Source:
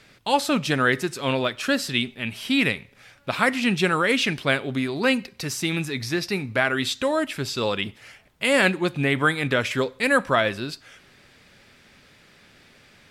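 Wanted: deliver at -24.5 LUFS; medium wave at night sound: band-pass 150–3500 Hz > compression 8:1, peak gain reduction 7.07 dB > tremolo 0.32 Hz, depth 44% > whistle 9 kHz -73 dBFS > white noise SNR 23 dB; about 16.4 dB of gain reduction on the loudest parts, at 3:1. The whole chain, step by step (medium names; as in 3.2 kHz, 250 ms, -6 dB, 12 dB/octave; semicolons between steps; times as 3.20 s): compression 3:1, threshold -38 dBFS; band-pass 150–3500 Hz; compression 8:1, threshold -36 dBFS; tremolo 0.32 Hz, depth 44%; whistle 9 kHz -73 dBFS; white noise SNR 23 dB; trim +19.5 dB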